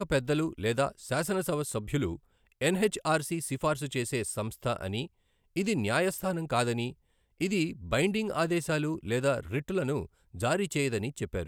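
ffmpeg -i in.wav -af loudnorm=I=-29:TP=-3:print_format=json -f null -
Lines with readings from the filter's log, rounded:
"input_i" : "-30.8",
"input_tp" : "-13.1",
"input_lra" : "1.1",
"input_thresh" : "-40.9",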